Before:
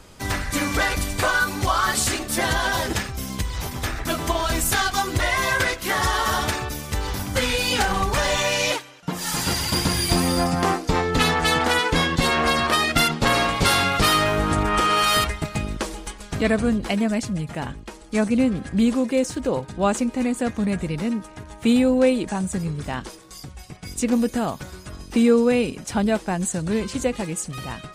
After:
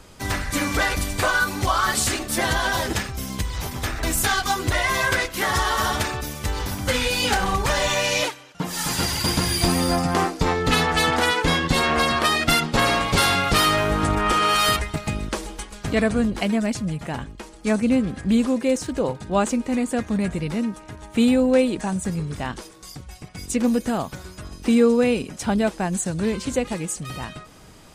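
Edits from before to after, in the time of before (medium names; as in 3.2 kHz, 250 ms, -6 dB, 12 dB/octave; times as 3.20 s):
4.03–4.51 s: delete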